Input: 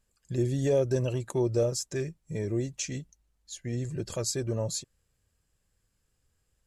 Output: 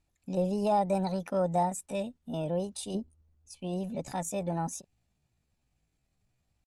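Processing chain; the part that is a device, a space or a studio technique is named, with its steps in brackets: low-pass 5.7 kHz 24 dB/octave; 2.95–3.53 s: tilt shelf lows +7 dB, about 690 Hz; chipmunk voice (pitch shift +7 st); trim -1.5 dB

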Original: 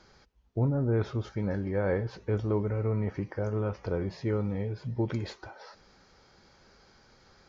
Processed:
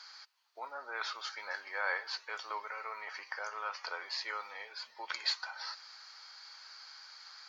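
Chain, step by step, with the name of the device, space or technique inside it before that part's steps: headphones lying on a table (high-pass 1 kHz 24 dB/octave; peaking EQ 4.5 kHz +11 dB 0.25 oct); trim +7 dB

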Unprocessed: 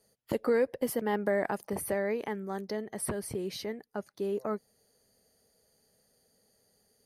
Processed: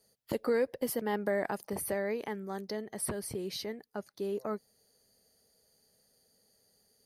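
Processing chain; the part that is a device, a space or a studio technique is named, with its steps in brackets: presence and air boost (peaking EQ 4.5 kHz +4.5 dB 0.86 oct; treble shelf 12 kHz +7 dB); trim -2.5 dB

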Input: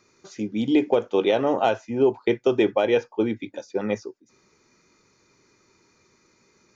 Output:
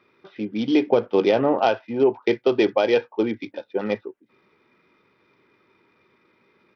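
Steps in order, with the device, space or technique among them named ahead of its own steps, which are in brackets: 0.89–1.53 s: tone controls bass +8 dB, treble -11 dB; Bluetooth headset (high-pass 190 Hz 6 dB/octave; resampled via 8 kHz; trim +2 dB; SBC 64 kbps 44.1 kHz)

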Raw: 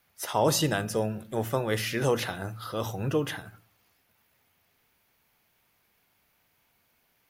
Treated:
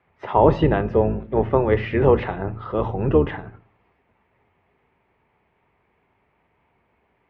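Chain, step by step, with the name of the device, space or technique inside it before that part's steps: sub-octave bass pedal (octave divider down 2 oct, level +1 dB; cabinet simulation 63–2200 Hz, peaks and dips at 400 Hz +7 dB, 920 Hz +4 dB, 1.5 kHz -7 dB); trim +7 dB

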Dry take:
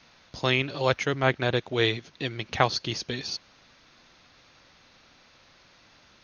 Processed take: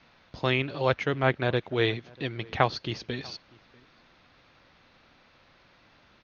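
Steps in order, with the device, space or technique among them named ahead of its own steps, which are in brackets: shout across a valley (distance through air 200 m; echo from a far wall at 110 m, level -25 dB)

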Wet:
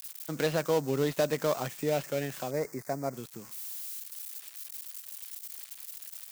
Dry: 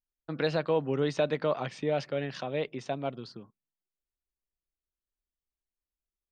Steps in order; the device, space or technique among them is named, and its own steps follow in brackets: budget class-D amplifier (dead-time distortion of 0.14 ms; zero-crossing glitches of -30 dBFS); 2.51–3.14 s: FFT filter 2.1 kHz 0 dB, 3 kHz -29 dB, 4.8 kHz -3 dB

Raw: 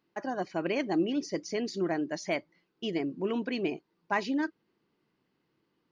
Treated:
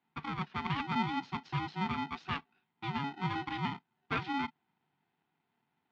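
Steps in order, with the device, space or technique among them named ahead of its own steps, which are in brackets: ring modulator pedal into a guitar cabinet (polarity switched at an audio rate 560 Hz; cabinet simulation 100–3600 Hz, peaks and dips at 150 Hz +10 dB, 380 Hz -3 dB, 570 Hz -5 dB); trim -4.5 dB

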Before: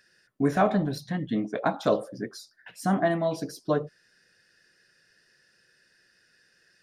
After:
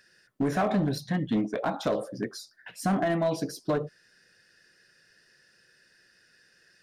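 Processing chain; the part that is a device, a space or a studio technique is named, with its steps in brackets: limiter into clipper (peak limiter -18.5 dBFS, peak gain reduction 7.5 dB; hard clipper -22 dBFS, distortion -19 dB); trim +2 dB

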